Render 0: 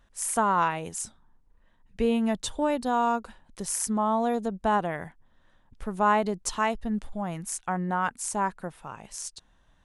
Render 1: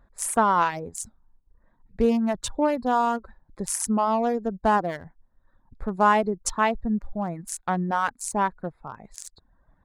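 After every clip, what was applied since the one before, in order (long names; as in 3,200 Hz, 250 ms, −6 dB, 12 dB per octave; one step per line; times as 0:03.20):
adaptive Wiener filter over 15 samples
reverb reduction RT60 0.83 s
level +4.5 dB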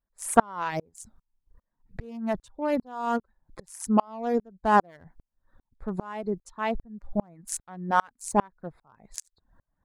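tremolo with a ramp in dB swelling 2.5 Hz, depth 36 dB
level +6.5 dB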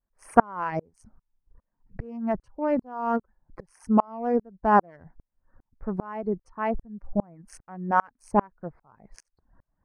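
pitch vibrato 0.53 Hz 23 cents
moving average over 12 samples
level +2 dB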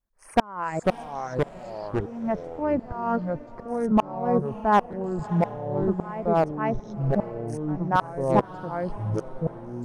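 hard clipping −11 dBFS, distortion −14 dB
feedback delay with all-pass diffusion 627 ms, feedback 41%, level −16 dB
delay with pitch and tempo change per echo 398 ms, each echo −4 semitones, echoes 3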